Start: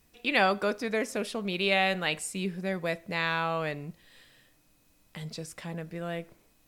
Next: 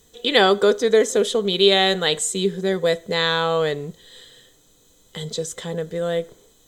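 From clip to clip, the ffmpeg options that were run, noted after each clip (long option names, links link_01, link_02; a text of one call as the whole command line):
ffmpeg -i in.wav -af "superequalizer=7b=3.16:12b=0.447:13b=2.82:15b=3.16,volume=6.5dB" out.wav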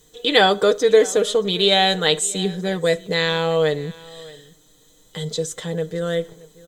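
ffmpeg -i in.wav -af "aecho=1:1:6.5:0.52,aecho=1:1:626:0.0841" out.wav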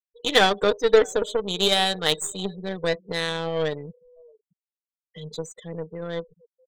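ffmpeg -i in.wav -af "afftfilt=real='re*gte(hypot(re,im),0.0501)':imag='im*gte(hypot(re,im),0.0501)':win_size=1024:overlap=0.75,aeval=exprs='0.841*(cos(1*acos(clip(val(0)/0.841,-1,1)))-cos(1*PI/2))+0.0841*(cos(3*acos(clip(val(0)/0.841,-1,1)))-cos(3*PI/2))+0.0299*(cos(4*acos(clip(val(0)/0.841,-1,1)))-cos(4*PI/2))+0.0422*(cos(7*acos(clip(val(0)/0.841,-1,1)))-cos(7*PI/2))+0.00944*(cos(8*acos(clip(val(0)/0.841,-1,1)))-cos(8*PI/2))':channel_layout=same,volume=-1dB" out.wav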